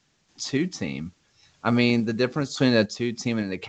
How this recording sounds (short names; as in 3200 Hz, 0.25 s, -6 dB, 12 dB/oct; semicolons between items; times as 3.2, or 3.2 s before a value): a quantiser's noise floor 10-bit, dither triangular; random-step tremolo; µ-law